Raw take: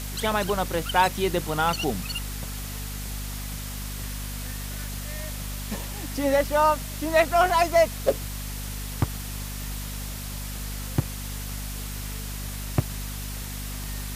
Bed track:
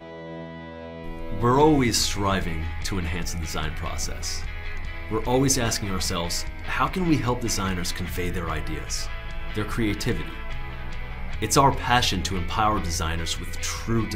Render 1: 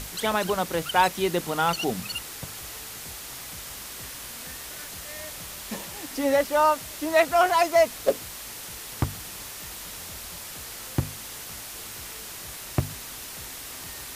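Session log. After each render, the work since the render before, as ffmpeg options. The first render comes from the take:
-af "bandreject=f=50:t=h:w=6,bandreject=f=100:t=h:w=6,bandreject=f=150:t=h:w=6,bandreject=f=200:t=h:w=6,bandreject=f=250:t=h:w=6"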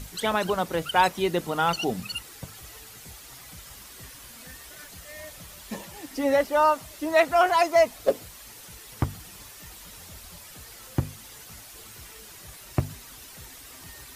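-af "afftdn=nr=9:nf=-39"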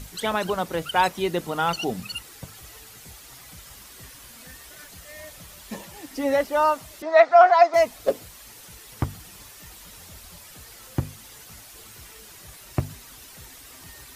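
-filter_complex "[0:a]asettb=1/sr,asplit=3[a][b][c];[a]atrim=end=7.024[d];[b]atrim=start=7.02:end=7.74,asetpts=PTS-STARTPTS,afade=t=in:d=0.004:c=qsin,afade=t=out:st=0.716:d=0.004:c=qsin,highpass=470,equalizer=f=700:t=q:w=4:g=9,equalizer=f=1.3k:t=q:w=4:g=5,equalizer=f=2k:t=q:w=4:g=3,equalizer=f=2.9k:t=q:w=4:g=-9,lowpass=f=5.2k:w=0.5412,lowpass=f=5.2k:w=1.3066[e];[c]atrim=start=7.736[f];[d][e]acrossfade=d=0.004:c1=hsin:c2=qsin[g];[g][f]acrossfade=d=0.004:c1=qsin:c2=hsin"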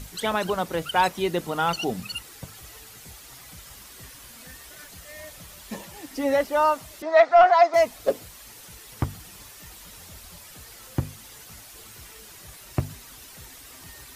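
-af "asoftclip=type=tanh:threshold=-6dB"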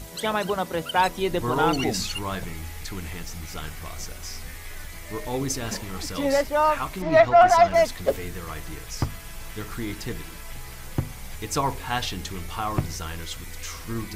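-filter_complex "[1:a]volume=-7dB[a];[0:a][a]amix=inputs=2:normalize=0"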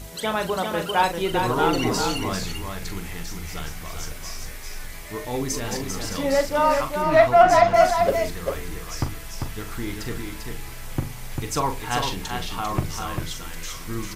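-filter_complex "[0:a]asplit=2[a][b];[b]adelay=41,volume=-9dB[c];[a][c]amix=inputs=2:normalize=0,asplit=2[d][e];[e]aecho=0:1:396:0.562[f];[d][f]amix=inputs=2:normalize=0"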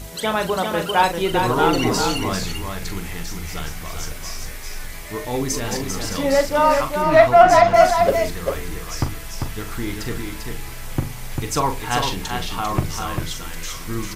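-af "volume=3.5dB,alimiter=limit=-2dB:level=0:latency=1"

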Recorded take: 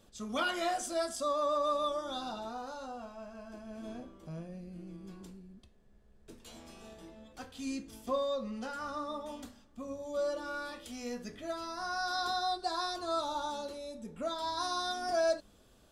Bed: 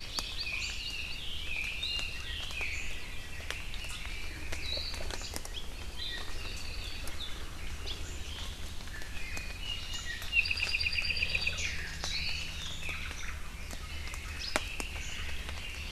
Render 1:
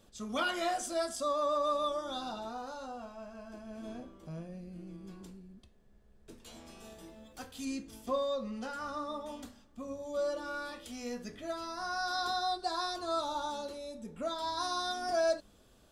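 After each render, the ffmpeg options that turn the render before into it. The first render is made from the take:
-filter_complex "[0:a]asettb=1/sr,asplit=3[a][b][c];[a]atrim=end=6.804[d];[b]atrim=start=6.8:end=7.65,asetpts=PTS-STARTPTS,afade=t=in:d=0.004:c=qsin,afade=t=out:st=0.846:d=0.004:c=qsin,highshelf=f=8.8k:g=11.5[e];[c]atrim=start=7.646[f];[d][e]acrossfade=d=0.004:c1=hsin:c2=qsin[g];[g][f]acrossfade=d=0.004:c1=qsin:c2=hsin"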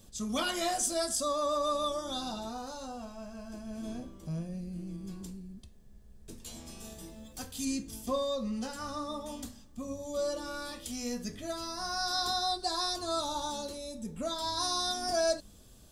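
-af "bass=f=250:g=9,treble=f=4k:g=11,bandreject=f=1.4k:w=16"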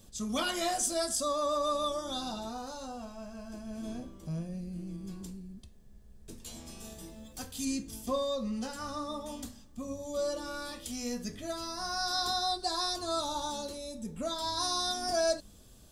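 -af anull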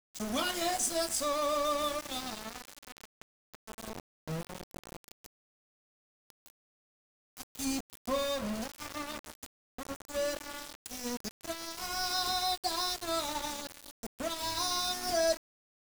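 -af "aeval=exprs='val(0)*gte(abs(val(0)),0.02)':c=same"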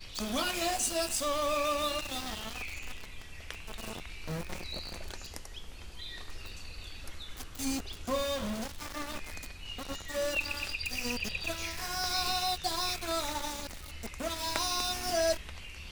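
-filter_complex "[1:a]volume=-5dB[a];[0:a][a]amix=inputs=2:normalize=0"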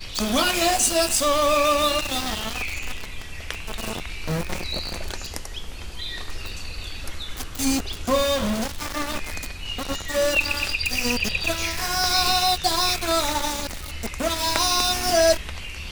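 -af "volume=11dB,alimiter=limit=-1dB:level=0:latency=1"

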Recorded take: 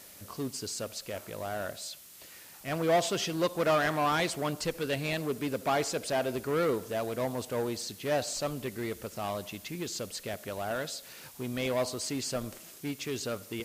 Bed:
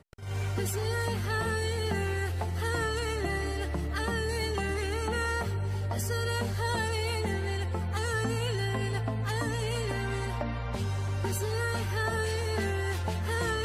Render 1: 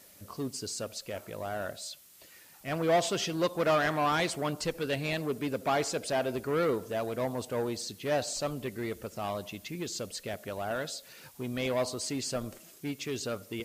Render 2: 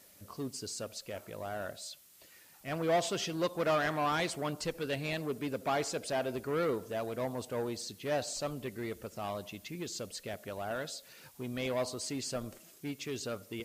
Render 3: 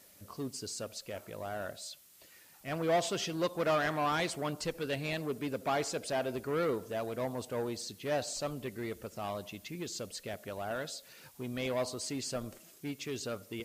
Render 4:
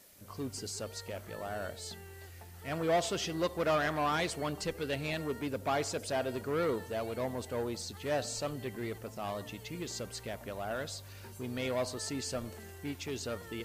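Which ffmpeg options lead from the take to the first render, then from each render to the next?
-af "afftdn=nr=6:nf=-51"
-af "volume=-3.5dB"
-af anull
-filter_complex "[1:a]volume=-19.5dB[a];[0:a][a]amix=inputs=2:normalize=0"

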